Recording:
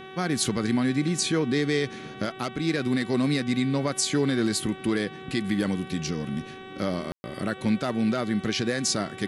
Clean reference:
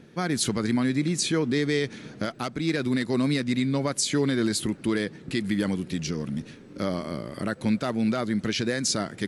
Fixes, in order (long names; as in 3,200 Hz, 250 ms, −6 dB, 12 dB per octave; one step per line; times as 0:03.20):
hum removal 379.3 Hz, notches 10
ambience match 0:07.12–0:07.24